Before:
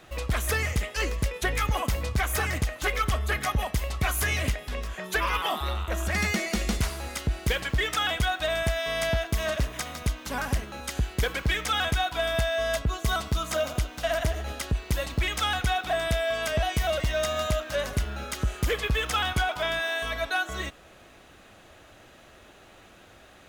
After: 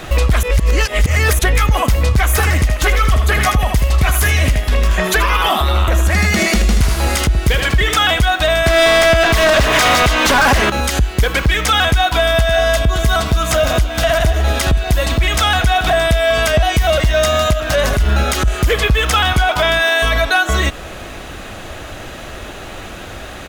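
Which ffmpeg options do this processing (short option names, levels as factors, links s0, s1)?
-filter_complex "[0:a]asettb=1/sr,asplit=3[s0][s1][s2];[s0]atrim=end=2.284[s3];[s1]atrim=start=2.28:end=8,asetpts=PTS-STARTPTS,afade=t=in:d=0.004:c=qsin,afade=t=out:st=5.716:d=0.004:c=qsin,aecho=1:1:78:0.376,atrim=end_sample=252252[s4];[s2]atrim=start=7.996[s5];[s3][s4]acrossfade=d=0.004:c1=hsin:c2=qsin[s6];[s6][s5]acrossfade=d=0.004:c1=qsin:c2=hsin,asettb=1/sr,asplit=3[s7][s8][s9];[s7]atrim=end=8.664[s10];[s8]atrim=start=8.66:end=10.7,asetpts=PTS-STARTPTS,afade=t=in:d=0.004:c=qsin,afade=t=out:st=2.036:d=0.004:c=qsin,asplit=2[s11][s12];[s12]highpass=f=720:p=1,volume=20,asoftclip=type=tanh:threshold=0.119[s13];[s11][s13]amix=inputs=2:normalize=0,lowpass=f=3500:p=1,volume=0.501[s14];[s9]atrim=start=10.696[s15];[s10][s14]acrossfade=d=0.004:c1=hsin:c2=qsin[s16];[s16][s15]acrossfade=d=0.004:c1=qsin:c2=hsin,asplit=2[s17][s18];[s18]afade=t=in:st=11.81:d=0.01,afade=t=out:st=12.66:d=0.01,aecho=0:1:570|1140|1710|2280|2850|3420|3990|4560|5130|5700|6270|6840:0.281838|0.239563|0.203628|0.173084|0.147121|0.125053|0.106295|0.0903509|0.0767983|0.0652785|0.0554867|0.0471637[s19];[s17][s19]amix=inputs=2:normalize=0,asettb=1/sr,asplit=3[s20][s21][s22];[s20]atrim=end=17.534[s23];[s21]atrim=start=17.53:end=18.48,asetpts=PTS-STARTPTS,afade=t=in:d=0.004:c=qsin,afade=t=out:st=0.946:d=0.004:c=qsin,acompressor=threshold=0.0447:ratio=6:attack=3.2:release=140:knee=1:detection=peak[s24];[s22]atrim=start=18.476[s25];[s23][s24]acrossfade=d=0.004:c1=hsin:c2=qsin[s26];[s26][s25]acrossfade=d=0.004:c1=qsin:c2=hsin,asplit=3[s27][s28][s29];[s27]atrim=end=0.432[s30];[s28]atrim=start=0.428:end=1.392,asetpts=PTS-STARTPTS,areverse[s31];[s29]atrim=start=1.388[s32];[s30][s31]acrossfade=d=0.004:c1=hsin:c2=hsin[s33];[s33][s32]acrossfade=d=0.004:c1=hsin:c2=hsin,lowshelf=f=70:g=9,acompressor=threshold=0.0316:ratio=4,alimiter=level_in=18.8:limit=0.891:release=50:level=0:latency=1,volume=0.596"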